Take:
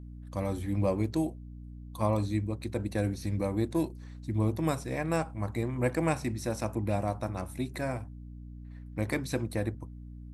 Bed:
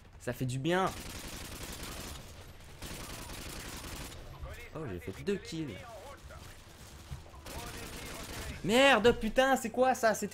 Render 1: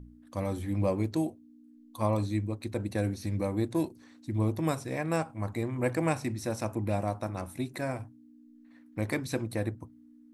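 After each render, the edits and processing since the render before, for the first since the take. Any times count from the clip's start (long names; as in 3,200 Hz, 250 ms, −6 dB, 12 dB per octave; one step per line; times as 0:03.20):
hum removal 60 Hz, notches 3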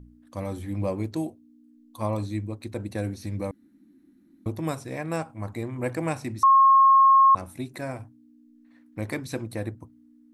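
0:03.51–0:04.46: fill with room tone
0:06.43–0:07.35: beep over 1,080 Hz −12.5 dBFS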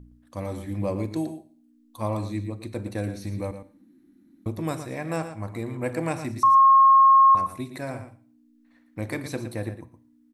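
single-tap delay 115 ms −10.5 dB
four-comb reverb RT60 0.49 s, combs from 28 ms, DRR 15 dB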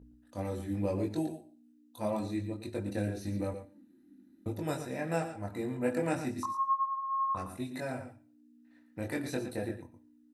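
notch comb filter 1,100 Hz
multi-voice chorus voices 6, 0.62 Hz, delay 22 ms, depth 2.5 ms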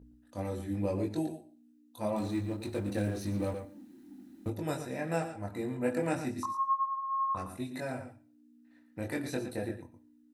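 0:02.17–0:04.50: mu-law and A-law mismatch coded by mu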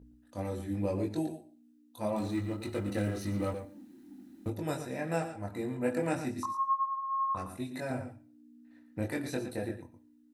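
0:02.37–0:03.52: hollow resonant body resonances 1,300/2,000/2,900 Hz, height 13 dB
0:07.90–0:09.06: low-shelf EQ 460 Hz +5.5 dB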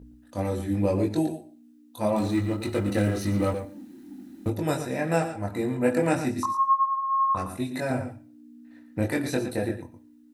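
level +8 dB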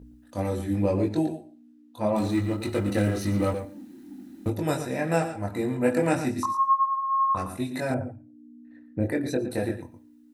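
0:00.82–0:02.14: low-pass filter 5,500 Hz → 2,500 Hz 6 dB per octave
0:07.94–0:09.51: spectral envelope exaggerated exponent 1.5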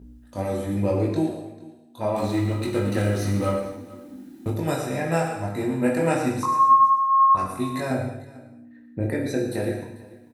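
single-tap delay 443 ms −20.5 dB
reverb whose tail is shaped and stops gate 310 ms falling, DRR 1.5 dB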